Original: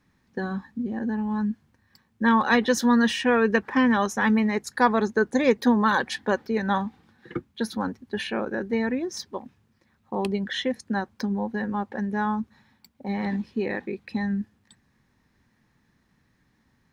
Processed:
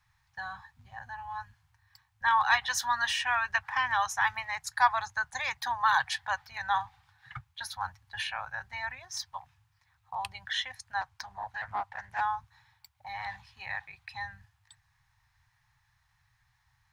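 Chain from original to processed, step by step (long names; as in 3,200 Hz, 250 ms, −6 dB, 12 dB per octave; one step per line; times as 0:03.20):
elliptic band-stop filter 120–800 Hz, stop band 40 dB
0:11.01–0:12.21: highs frequency-modulated by the lows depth 0.56 ms
level −1 dB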